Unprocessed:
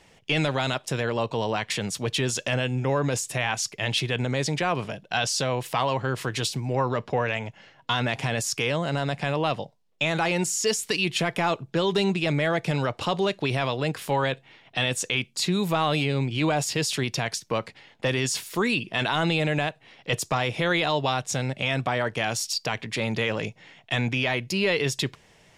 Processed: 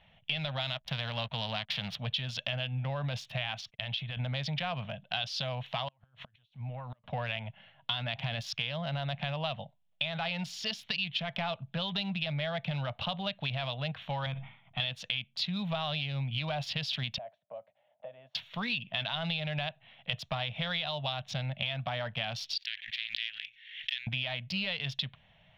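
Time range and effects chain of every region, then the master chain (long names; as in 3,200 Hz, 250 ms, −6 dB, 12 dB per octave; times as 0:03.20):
0:00.60–0:01.98: spectral envelope flattened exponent 0.6 + slack as between gear wheels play −40 dBFS
0:03.60–0:04.17: noise gate −41 dBFS, range −31 dB + downward compressor 8 to 1, threshold −28 dBFS
0:05.88–0:07.04: downward compressor 8 to 1, threshold −29 dBFS + gate with flip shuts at −24 dBFS, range −30 dB
0:14.26–0:14.80: high-frequency loss of the air 480 metres + comb filter 0.9 ms, depth 55% + level that may fall only so fast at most 100 dB per second
0:17.18–0:18.35: resonant band-pass 610 Hz, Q 7.3 + multiband upward and downward compressor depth 70%
0:22.58–0:24.07: gain on one half-wave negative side −7 dB + elliptic high-pass filter 1,700 Hz + background raised ahead of every attack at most 65 dB per second
whole clip: adaptive Wiener filter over 9 samples; drawn EQ curve 140 Hz 0 dB, 220 Hz −4 dB, 360 Hz −27 dB, 640 Hz 0 dB, 1,000 Hz −6 dB, 2,100 Hz −2 dB, 3,400 Hz +9 dB, 5,200 Hz −2 dB, 7,800 Hz −26 dB, 15,000 Hz −11 dB; downward compressor 5 to 1, threshold −27 dBFS; level −3 dB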